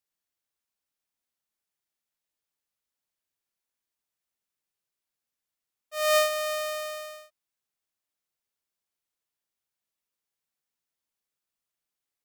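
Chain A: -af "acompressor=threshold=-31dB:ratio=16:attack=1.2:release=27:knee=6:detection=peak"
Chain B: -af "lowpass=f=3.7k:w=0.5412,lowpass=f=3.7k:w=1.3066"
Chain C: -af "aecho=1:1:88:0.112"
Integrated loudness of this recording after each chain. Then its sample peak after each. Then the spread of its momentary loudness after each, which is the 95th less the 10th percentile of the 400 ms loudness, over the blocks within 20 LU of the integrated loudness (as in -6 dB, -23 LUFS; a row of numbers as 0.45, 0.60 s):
-35.0, -27.5, -26.5 LUFS; -28.5, -14.0, -14.0 dBFS; 10, 16, 17 LU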